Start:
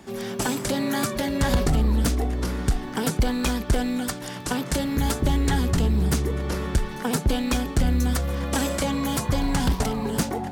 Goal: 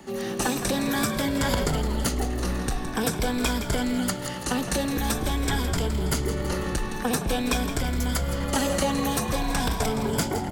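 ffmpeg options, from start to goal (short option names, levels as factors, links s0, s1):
-filter_complex "[0:a]afftfilt=real='re*pow(10,7/40*sin(2*PI*(1.7*log(max(b,1)*sr/1024/100)/log(2)-(-0.46)*(pts-256)/sr)))':imag='im*pow(10,7/40*sin(2*PI*(1.7*log(max(b,1)*sr/1024/100)/log(2)-(-0.46)*(pts-256)/sr)))':win_size=1024:overlap=0.75,acrossover=split=390|930|3200[s0][s1][s2][s3];[s0]alimiter=limit=0.075:level=0:latency=1[s4];[s4][s1][s2][s3]amix=inputs=4:normalize=0,asplit=8[s5][s6][s7][s8][s9][s10][s11][s12];[s6]adelay=165,afreqshift=-60,volume=0.299[s13];[s7]adelay=330,afreqshift=-120,volume=0.17[s14];[s8]adelay=495,afreqshift=-180,volume=0.0966[s15];[s9]adelay=660,afreqshift=-240,volume=0.0556[s16];[s10]adelay=825,afreqshift=-300,volume=0.0316[s17];[s11]adelay=990,afreqshift=-360,volume=0.018[s18];[s12]adelay=1155,afreqshift=-420,volume=0.0102[s19];[s5][s13][s14][s15][s16][s17][s18][s19]amix=inputs=8:normalize=0"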